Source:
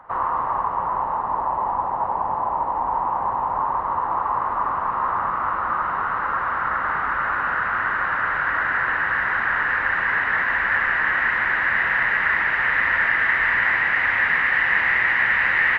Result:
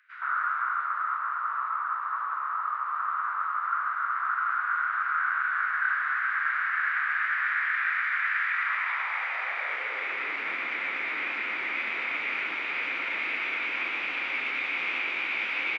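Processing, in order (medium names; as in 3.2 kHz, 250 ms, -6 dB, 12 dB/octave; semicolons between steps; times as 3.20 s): formant shift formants +4 st; three bands offset in time highs, mids, lows 120/490 ms, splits 190/2200 Hz; high-pass sweep 1.5 kHz -> 290 Hz, 8.47–10.44 s; trim -8.5 dB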